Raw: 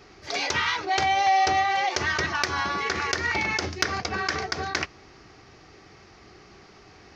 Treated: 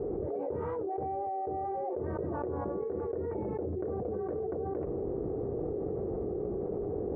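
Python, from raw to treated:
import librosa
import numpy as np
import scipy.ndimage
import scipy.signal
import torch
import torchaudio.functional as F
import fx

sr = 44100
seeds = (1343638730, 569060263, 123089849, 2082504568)

y = fx.ladder_lowpass(x, sr, hz=530.0, resonance_pct=65)
y = fx.env_flatten(y, sr, amount_pct=100)
y = F.gain(torch.from_numpy(y), -2.5).numpy()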